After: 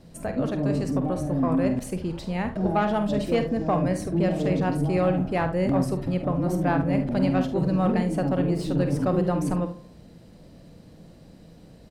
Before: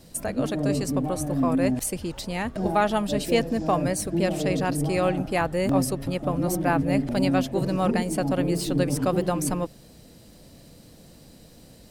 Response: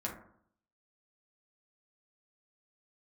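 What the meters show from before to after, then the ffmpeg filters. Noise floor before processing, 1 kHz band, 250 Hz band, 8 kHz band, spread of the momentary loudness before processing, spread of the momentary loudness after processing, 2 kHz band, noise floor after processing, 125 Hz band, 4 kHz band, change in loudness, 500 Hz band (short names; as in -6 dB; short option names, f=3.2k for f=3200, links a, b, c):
-50 dBFS, -1.5 dB, +1.0 dB, -12.0 dB, 5 LU, 6 LU, -3.0 dB, -50 dBFS, +2.0 dB, -7.0 dB, 0.0 dB, -0.5 dB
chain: -filter_complex "[0:a]lowpass=f=1.9k:p=1,equalizer=f=170:w=5.2:g=5,asoftclip=type=tanh:threshold=-13dB,aecho=1:1:49|73:0.316|0.178,asplit=2[a][b];[1:a]atrim=start_sample=2205,adelay=33[c];[b][c]afir=irnorm=-1:irlink=0,volume=-16.5dB[d];[a][d]amix=inputs=2:normalize=0"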